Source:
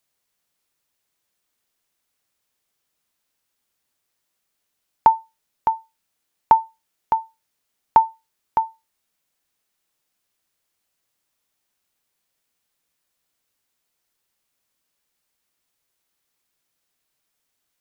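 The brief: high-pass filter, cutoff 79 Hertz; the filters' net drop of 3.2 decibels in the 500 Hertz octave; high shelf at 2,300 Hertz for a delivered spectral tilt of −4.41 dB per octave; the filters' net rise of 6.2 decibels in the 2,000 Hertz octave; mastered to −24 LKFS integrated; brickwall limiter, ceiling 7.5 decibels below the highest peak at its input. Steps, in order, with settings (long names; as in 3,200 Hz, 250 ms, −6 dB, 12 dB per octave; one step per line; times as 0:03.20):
high-pass filter 79 Hz
parametric band 500 Hz −5.5 dB
parametric band 2,000 Hz +5 dB
high-shelf EQ 2,300 Hz +7.5 dB
level +1.5 dB
brickwall limiter −8 dBFS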